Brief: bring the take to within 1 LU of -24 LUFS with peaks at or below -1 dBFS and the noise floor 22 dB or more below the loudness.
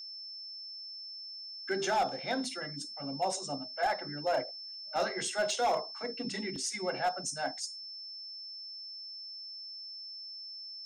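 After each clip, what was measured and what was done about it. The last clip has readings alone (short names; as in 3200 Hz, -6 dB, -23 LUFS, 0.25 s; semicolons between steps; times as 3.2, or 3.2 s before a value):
clipped 0.5%; flat tops at -23.5 dBFS; steady tone 5300 Hz; tone level -42 dBFS; loudness -35.5 LUFS; peak -23.5 dBFS; loudness target -24.0 LUFS
-> clip repair -23.5 dBFS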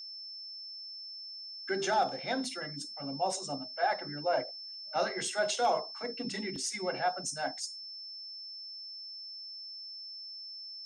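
clipped 0.0%; steady tone 5300 Hz; tone level -42 dBFS
-> notch 5300 Hz, Q 30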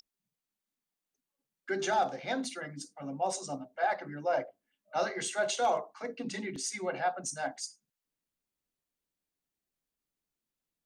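steady tone none; loudness -34.0 LUFS; peak -18.0 dBFS; loudness target -24.0 LUFS
-> gain +10 dB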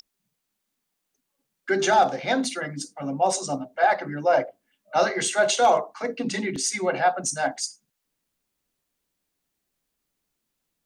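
loudness -24.0 LUFS; peak -8.0 dBFS; noise floor -80 dBFS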